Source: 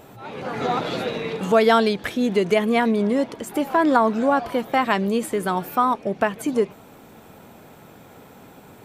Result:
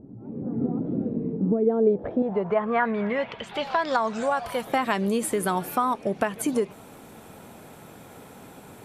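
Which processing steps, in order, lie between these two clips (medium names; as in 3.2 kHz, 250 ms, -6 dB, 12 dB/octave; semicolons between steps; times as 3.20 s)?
2.22–4.67 s: peaking EQ 300 Hz -15 dB 0.81 oct; compression 3:1, threshold -21 dBFS, peak gain reduction 7.5 dB; low-pass sweep 260 Hz -> 11 kHz, 1.39–4.48 s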